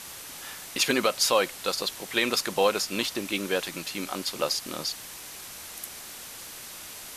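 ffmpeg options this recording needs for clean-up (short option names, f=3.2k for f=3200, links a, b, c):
-af "bandreject=f=6k:w=30,afwtdn=0.01"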